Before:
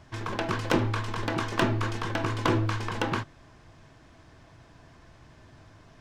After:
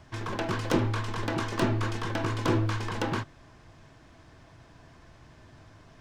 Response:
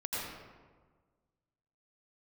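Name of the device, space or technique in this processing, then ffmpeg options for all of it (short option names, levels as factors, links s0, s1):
one-band saturation: -filter_complex "[0:a]acrossover=split=570|4600[s0][s1][s2];[s1]asoftclip=type=tanh:threshold=0.0447[s3];[s0][s3][s2]amix=inputs=3:normalize=0"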